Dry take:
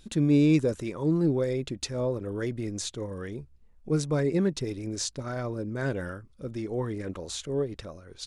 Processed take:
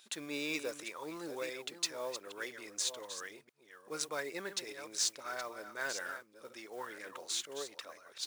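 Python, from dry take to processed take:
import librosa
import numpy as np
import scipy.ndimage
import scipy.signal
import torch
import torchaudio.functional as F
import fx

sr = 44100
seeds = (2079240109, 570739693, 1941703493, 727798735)

y = fx.reverse_delay(x, sr, ms=499, wet_db=-10.0)
y = scipy.signal.sosfilt(scipy.signal.butter(2, 1000.0, 'highpass', fs=sr, output='sos'), y)
y = fx.mod_noise(y, sr, seeds[0], snr_db=19)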